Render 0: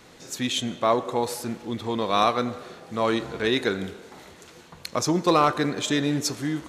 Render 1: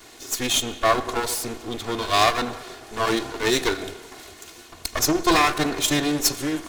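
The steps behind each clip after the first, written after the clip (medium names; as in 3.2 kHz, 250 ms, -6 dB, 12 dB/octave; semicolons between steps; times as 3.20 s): comb filter that takes the minimum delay 2.8 ms; treble shelf 3.7 kHz +7.5 dB; trim +3.5 dB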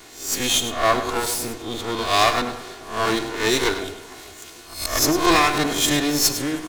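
reverse spectral sustain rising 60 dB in 0.44 s; delay 102 ms -11.5 dB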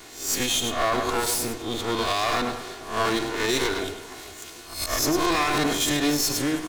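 peak limiter -13.5 dBFS, peak gain reduction 10 dB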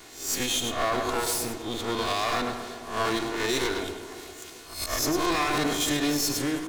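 tape echo 131 ms, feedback 77%, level -10 dB, low-pass 1.3 kHz; trim -3 dB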